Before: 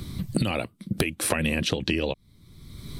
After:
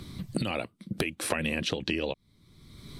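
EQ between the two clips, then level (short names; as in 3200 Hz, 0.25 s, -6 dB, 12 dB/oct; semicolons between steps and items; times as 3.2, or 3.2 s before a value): low shelf 150 Hz -7.5 dB; high shelf 11000 Hz -11 dB; -3.0 dB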